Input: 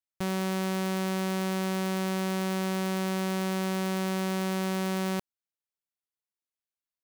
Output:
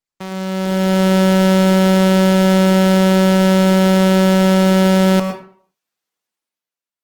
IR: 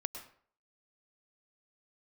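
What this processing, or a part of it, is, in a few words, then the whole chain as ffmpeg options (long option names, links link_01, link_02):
far-field microphone of a smart speaker: -filter_complex "[0:a]highshelf=frequency=7900:gain=-7[link_01];[1:a]atrim=start_sample=2205[link_02];[link_01][link_02]afir=irnorm=-1:irlink=0,highpass=160,dynaudnorm=framelen=120:gausssize=13:maxgain=13dB,volume=4dB" -ar 48000 -c:a libopus -b:a 16k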